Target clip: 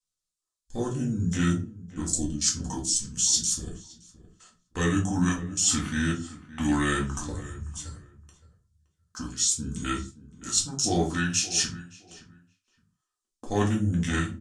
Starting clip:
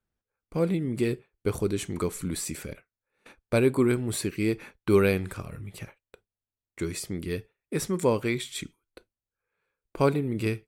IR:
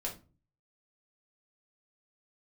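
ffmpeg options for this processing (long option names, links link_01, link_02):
-filter_complex "[0:a]equalizer=frequency=1800:width=4.7:gain=9,asetrate=32667,aresample=44100,crystalizer=i=5:c=0,afwtdn=0.0224,aexciter=amount=5.2:drive=3.5:freq=3100,areverse,acompressor=threshold=-22dB:ratio=5,areverse,lowpass=frequency=8000:width=0.5412,lowpass=frequency=8000:width=1.3066,equalizer=frequency=280:width=3.5:gain=-3.5,asplit=2[link_01][link_02];[link_02]adelay=568,lowpass=frequency=1800:poles=1,volume=-16dB,asplit=2[link_03][link_04];[link_04]adelay=568,lowpass=frequency=1800:poles=1,volume=0.21[link_05];[link_01][link_03][link_05]amix=inputs=3:normalize=0[link_06];[1:a]atrim=start_sample=2205,afade=type=out:start_time=0.23:duration=0.01,atrim=end_sample=10584[link_07];[link_06][link_07]afir=irnorm=-1:irlink=0"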